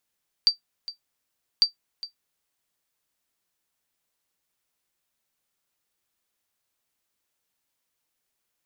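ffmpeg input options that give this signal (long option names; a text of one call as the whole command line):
ffmpeg -f lavfi -i "aevalsrc='0.355*(sin(2*PI*4660*mod(t,1.15))*exp(-6.91*mod(t,1.15)/0.12)+0.15*sin(2*PI*4660*max(mod(t,1.15)-0.41,0))*exp(-6.91*max(mod(t,1.15)-0.41,0)/0.12))':duration=2.3:sample_rate=44100" out.wav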